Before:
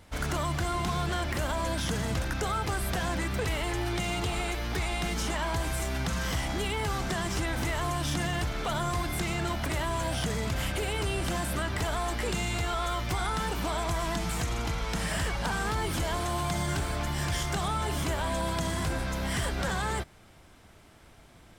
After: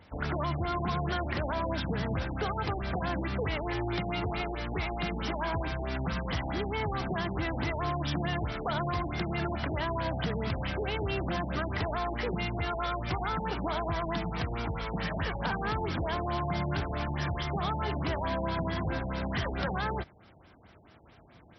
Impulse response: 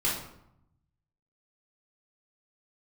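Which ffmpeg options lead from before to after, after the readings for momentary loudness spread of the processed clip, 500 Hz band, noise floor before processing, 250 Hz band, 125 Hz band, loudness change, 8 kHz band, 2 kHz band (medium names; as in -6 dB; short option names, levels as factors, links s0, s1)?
2 LU, 0.0 dB, -54 dBFS, 0.0 dB, -1.5 dB, -2.0 dB, under -20 dB, -2.5 dB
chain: -af "highpass=67,afftfilt=real='re*lt(b*sr/1024,880*pow(6000/880,0.5+0.5*sin(2*PI*4.6*pts/sr)))':imag='im*lt(b*sr/1024,880*pow(6000/880,0.5+0.5*sin(2*PI*4.6*pts/sr)))':win_size=1024:overlap=0.75"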